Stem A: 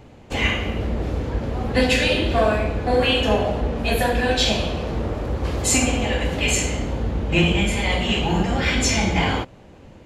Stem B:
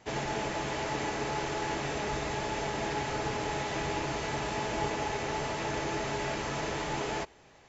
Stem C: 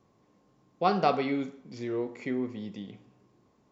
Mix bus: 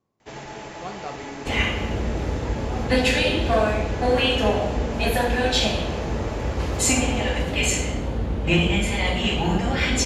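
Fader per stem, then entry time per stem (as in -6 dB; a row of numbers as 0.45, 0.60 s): -1.5, -3.5, -10.5 dB; 1.15, 0.20, 0.00 s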